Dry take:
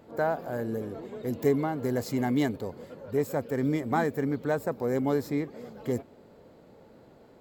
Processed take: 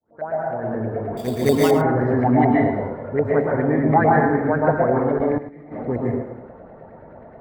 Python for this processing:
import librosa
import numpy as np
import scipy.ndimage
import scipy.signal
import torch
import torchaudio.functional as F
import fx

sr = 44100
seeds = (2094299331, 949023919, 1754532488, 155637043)

y = fx.fade_in_head(x, sr, length_s=1.03)
y = fx.filter_lfo_lowpass(y, sr, shape='saw_up', hz=9.4, low_hz=560.0, high_hz=2200.0, q=6.3)
y = fx.rev_plate(y, sr, seeds[0], rt60_s=0.94, hf_ratio=0.85, predelay_ms=105, drr_db=-3.0)
y = fx.sample_hold(y, sr, seeds[1], rate_hz=4100.0, jitter_pct=0, at=(1.17, 1.71))
y = fx.high_shelf(y, sr, hz=8200.0, db=7.0)
y = fx.level_steps(y, sr, step_db=22, at=(5.01, 5.71), fade=0.02)
y = fx.tilt_eq(y, sr, slope=-2.0)
y = y + 10.0 ** (-13.5 / 20.0) * np.pad(y, (int(105 * sr / 1000.0), 0))[:len(y)]